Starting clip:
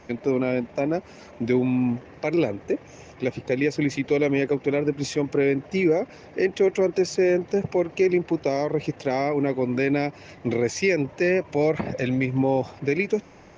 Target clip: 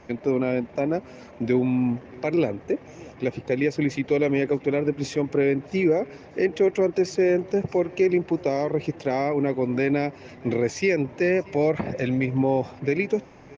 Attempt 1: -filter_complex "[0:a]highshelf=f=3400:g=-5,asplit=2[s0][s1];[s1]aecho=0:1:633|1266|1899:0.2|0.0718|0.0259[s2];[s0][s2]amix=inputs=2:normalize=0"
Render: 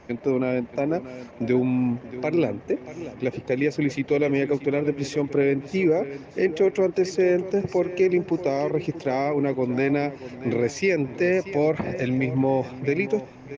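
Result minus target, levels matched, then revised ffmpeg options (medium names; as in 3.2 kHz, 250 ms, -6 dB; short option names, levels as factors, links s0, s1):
echo-to-direct +9.5 dB
-filter_complex "[0:a]highshelf=f=3400:g=-5,asplit=2[s0][s1];[s1]aecho=0:1:633|1266:0.0668|0.0241[s2];[s0][s2]amix=inputs=2:normalize=0"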